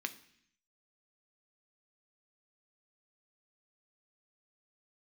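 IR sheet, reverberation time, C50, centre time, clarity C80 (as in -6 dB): 0.65 s, 15.5 dB, 6 ms, 18.5 dB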